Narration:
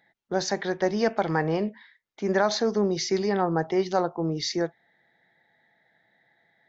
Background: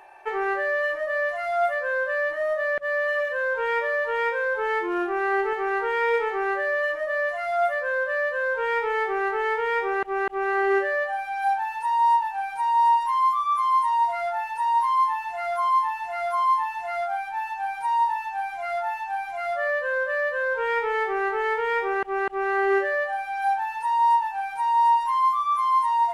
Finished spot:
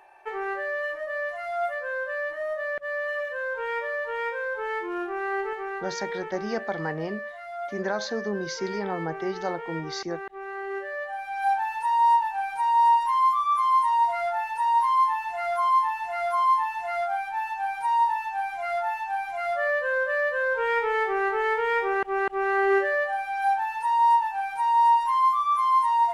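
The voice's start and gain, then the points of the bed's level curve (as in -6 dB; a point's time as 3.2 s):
5.50 s, -6.0 dB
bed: 5.48 s -5 dB
6.04 s -11.5 dB
10.72 s -11.5 dB
11.52 s 0 dB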